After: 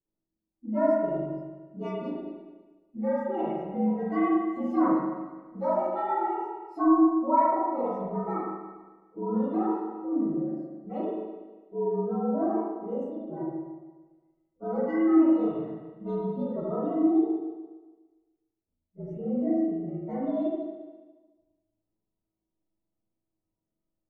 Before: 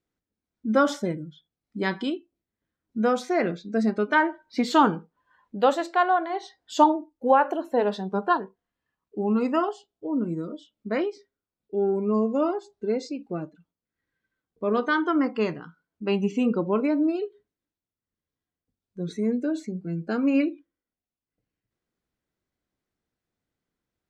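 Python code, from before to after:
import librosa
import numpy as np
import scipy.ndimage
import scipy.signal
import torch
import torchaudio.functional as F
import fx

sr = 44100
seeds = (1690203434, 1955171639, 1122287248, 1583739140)

y = fx.partial_stretch(x, sr, pct=115)
y = scipy.signal.savgol_filter(y, 65, 4, mode='constant')
y = fx.low_shelf(y, sr, hz=330.0, db=4.5)
y = fx.comb_fb(y, sr, f0_hz=320.0, decay_s=0.15, harmonics='all', damping=0.0, mix_pct=80)
y = fx.dynamic_eq(y, sr, hz=190.0, q=0.71, threshold_db=-44.0, ratio=4.0, max_db=-6)
y = fx.rev_spring(y, sr, rt60_s=1.3, pass_ms=(37, 41), chirp_ms=70, drr_db=-5.5)
y = y * librosa.db_to_amplitude(2.5)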